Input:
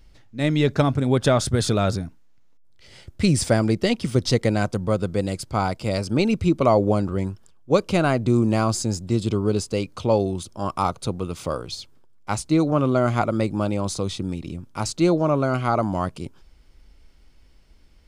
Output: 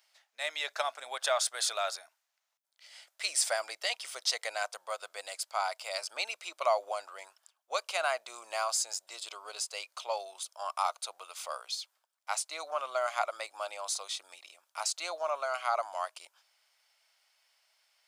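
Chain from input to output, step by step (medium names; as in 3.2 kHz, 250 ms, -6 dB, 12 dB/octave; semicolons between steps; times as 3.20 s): Chebyshev high-pass 640 Hz, order 4; tilt EQ +2 dB/octave; trim -6.5 dB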